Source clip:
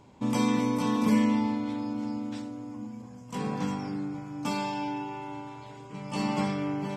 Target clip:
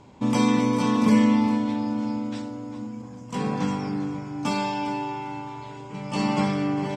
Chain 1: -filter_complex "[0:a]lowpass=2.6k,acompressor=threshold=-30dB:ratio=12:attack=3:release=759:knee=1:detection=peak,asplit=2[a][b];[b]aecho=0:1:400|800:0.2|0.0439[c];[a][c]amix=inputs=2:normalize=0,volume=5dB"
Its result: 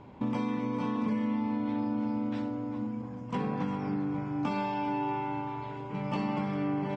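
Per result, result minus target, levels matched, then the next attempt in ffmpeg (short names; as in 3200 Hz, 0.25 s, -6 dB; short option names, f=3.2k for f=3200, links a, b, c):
8000 Hz band -15.5 dB; compressor: peak gain reduction +14 dB
-filter_complex "[0:a]lowpass=8.7k,acompressor=threshold=-30dB:ratio=12:attack=3:release=759:knee=1:detection=peak,asplit=2[a][b];[b]aecho=0:1:400|800:0.2|0.0439[c];[a][c]amix=inputs=2:normalize=0,volume=5dB"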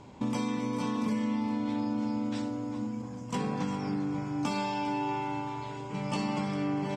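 compressor: peak gain reduction +14 dB
-filter_complex "[0:a]lowpass=8.7k,asplit=2[a][b];[b]aecho=0:1:400|800:0.2|0.0439[c];[a][c]amix=inputs=2:normalize=0,volume=5dB"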